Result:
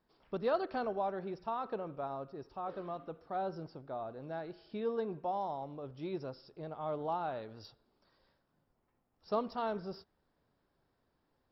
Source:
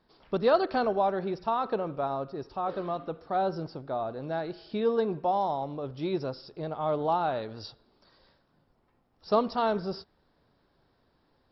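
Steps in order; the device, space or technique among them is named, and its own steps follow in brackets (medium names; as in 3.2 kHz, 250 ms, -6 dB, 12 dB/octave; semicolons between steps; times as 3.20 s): exciter from parts (in parallel at -6 dB: high-pass 3.9 kHz 24 dB/octave + saturation -38.5 dBFS, distortion -18 dB); on the sum: trim -9 dB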